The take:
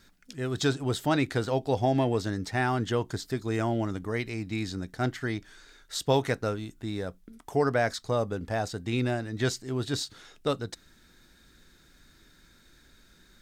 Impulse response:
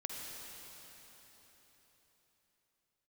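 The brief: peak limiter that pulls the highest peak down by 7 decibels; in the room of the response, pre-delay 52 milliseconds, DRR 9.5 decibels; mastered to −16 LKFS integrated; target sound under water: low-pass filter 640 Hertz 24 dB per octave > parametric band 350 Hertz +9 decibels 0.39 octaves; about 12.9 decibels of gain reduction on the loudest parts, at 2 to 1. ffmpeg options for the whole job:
-filter_complex "[0:a]acompressor=threshold=-44dB:ratio=2,alimiter=level_in=7dB:limit=-24dB:level=0:latency=1,volume=-7dB,asplit=2[link_01][link_02];[1:a]atrim=start_sample=2205,adelay=52[link_03];[link_02][link_03]afir=irnorm=-1:irlink=0,volume=-10dB[link_04];[link_01][link_04]amix=inputs=2:normalize=0,lowpass=frequency=640:width=0.5412,lowpass=frequency=640:width=1.3066,equalizer=frequency=350:width_type=o:width=0.39:gain=9,volume=24dB"

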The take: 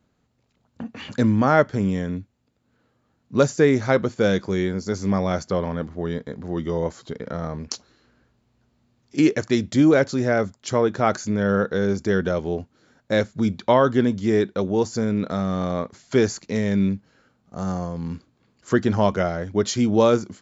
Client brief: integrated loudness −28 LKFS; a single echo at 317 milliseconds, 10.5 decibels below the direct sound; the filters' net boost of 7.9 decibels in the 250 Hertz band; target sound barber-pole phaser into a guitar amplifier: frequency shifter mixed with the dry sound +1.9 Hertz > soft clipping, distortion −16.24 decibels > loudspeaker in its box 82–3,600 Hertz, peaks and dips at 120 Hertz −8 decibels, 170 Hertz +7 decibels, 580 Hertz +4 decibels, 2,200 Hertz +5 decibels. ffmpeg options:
ffmpeg -i in.wav -filter_complex "[0:a]equalizer=frequency=250:width_type=o:gain=8.5,aecho=1:1:317:0.299,asplit=2[link_01][link_02];[link_02]afreqshift=1.9[link_03];[link_01][link_03]amix=inputs=2:normalize=1,asoftclip=threshold=-9dB,highpass=82,equalizer=frequency=120:width_type=q:width=4:gain=-8,equalizer=frequency=170:width_type=q:width=4:gain=7,equalizer=frequency=580:width_type=q:width=4:gain=4,equalizer=frequency=2200:width_type=q:width=4:gain=5,lowpass=frequency=3600:width=0.5412,lowpass=frequency=3600:width=1.3066,volume=-7.5dB" out.wav

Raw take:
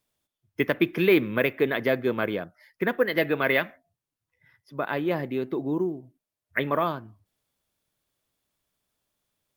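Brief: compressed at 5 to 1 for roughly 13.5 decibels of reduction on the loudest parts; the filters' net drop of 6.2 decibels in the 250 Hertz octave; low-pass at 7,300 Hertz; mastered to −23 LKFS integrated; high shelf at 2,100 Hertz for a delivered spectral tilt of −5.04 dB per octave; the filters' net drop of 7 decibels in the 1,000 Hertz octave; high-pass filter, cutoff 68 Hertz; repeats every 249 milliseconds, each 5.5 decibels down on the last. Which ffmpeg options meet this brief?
ffmpeg -i in.wav -af "highpass=68,lowpass=7300,equalizer=frequency=250:width_type=o:gain=-8.5,equalizer=frequency=1000:width_type=o:gain=-7,highshelf=frequency=2100:gain=-8,acompressor=threshold=-35dB:ratio=5,aecho=1:1:249|498|747|996|1245|1494|1743:0.531|0.281|0.149|0.079|0.0419|0.0222|0.0118,volume=16.5dB" out.wav

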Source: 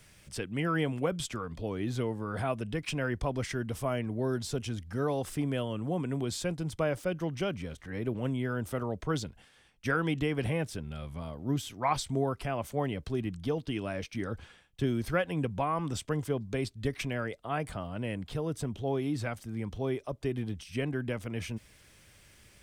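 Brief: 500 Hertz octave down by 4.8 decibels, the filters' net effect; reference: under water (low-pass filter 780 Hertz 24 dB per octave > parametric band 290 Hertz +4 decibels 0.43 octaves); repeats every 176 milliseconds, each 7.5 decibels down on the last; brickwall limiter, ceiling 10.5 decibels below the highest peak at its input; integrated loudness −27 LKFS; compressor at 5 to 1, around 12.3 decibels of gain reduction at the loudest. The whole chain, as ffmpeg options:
ffmpeg -i in.wav -af "equalizer=frequency=500:width_type=o:gain=-6.5,acompressor=threshold=-40dB:ratio=5,alimiter=level_in=14.5dB:limit=-24dB:level=0:latency=1,volume=-14.5dB,lowpass=frequency=780:width=0.5412,lowpass=frequency=780:width=1.3066,equalizer=frequency=290:width_type=o:width=0.43:gain=4,aecho=1:1:176|352|528|704|880:0.422|0.177|0.0744|0.0312|0.0131,volume=20.5dB" out.wav

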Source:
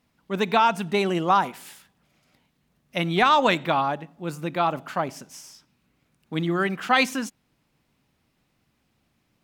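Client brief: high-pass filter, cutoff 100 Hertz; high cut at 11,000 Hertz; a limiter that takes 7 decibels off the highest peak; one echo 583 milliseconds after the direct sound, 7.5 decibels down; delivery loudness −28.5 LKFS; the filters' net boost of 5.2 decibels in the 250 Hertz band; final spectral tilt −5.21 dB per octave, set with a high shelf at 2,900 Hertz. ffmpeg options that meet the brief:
ffmpeg -i in.wav -af "highpass=100,lowpass=11000,equalizer=frequency=250:width_type=o:gain=7.5,highshelf=frequency=2900:gain=4.5,alimiter=limit=-10.5dB:level=0:latency=1,aecho=1:1:583:0.422,volume=-4.5dB" out.wav

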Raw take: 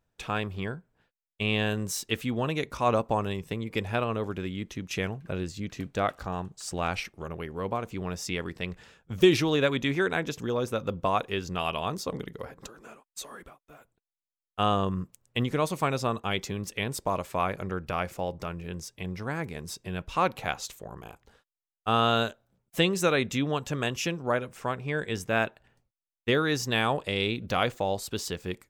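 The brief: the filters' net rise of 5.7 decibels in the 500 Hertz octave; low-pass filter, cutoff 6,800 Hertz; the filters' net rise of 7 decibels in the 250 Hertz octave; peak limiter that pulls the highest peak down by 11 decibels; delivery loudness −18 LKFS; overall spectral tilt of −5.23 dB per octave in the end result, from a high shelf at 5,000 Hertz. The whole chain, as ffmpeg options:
ffmpeg -i in.wav -af "lowpass=6800,equalizer=frequency=250:width_type=o:gain=8,equalizer=frequency=500:width_type=o:gain=4.5,highshelf=frequency=5000:gain=8,volume=9.5dB,alimiter=limit=-4.5dB:level=0:latency=1" out.wav

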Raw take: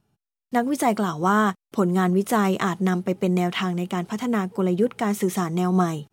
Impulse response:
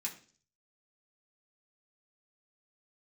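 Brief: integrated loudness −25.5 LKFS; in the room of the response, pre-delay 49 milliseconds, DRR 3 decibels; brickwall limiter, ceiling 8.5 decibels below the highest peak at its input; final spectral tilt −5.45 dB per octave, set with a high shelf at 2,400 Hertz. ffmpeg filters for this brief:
-filter_complex "[0:a]highshelf=frequency=2400:gain=-8.5,alimiter=limit=-17.5dB:level=0:latency=1,asplit=2[link_01][link_02];[1:a]atrim=start_sample=2205,adelay=49[link_03];[link_02][link_03]afir=irnorm=-1:irlink=0,volume=-3dB[link_04];[link_01][link_04]amix=inputs=2:normalize=0"

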